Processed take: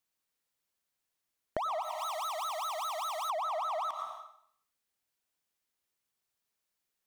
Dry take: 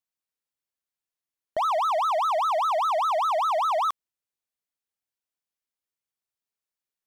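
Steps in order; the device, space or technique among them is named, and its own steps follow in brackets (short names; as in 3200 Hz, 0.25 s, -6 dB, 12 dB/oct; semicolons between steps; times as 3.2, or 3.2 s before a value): 1.82–3.3 pre-emphasis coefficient 0.9; plate-style reverb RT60 0.65 s, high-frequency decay 0.95×, pre-delay 80 ms, DRR 10 dB; serial compression, peaks first (compressor 4:1, threshold -35 dBFS, peak gain reduction 11.5 dB; compressor 2.5:1, threshold -39 dBFS, peak gain reduction 5.5 dB); gain +5.5 dB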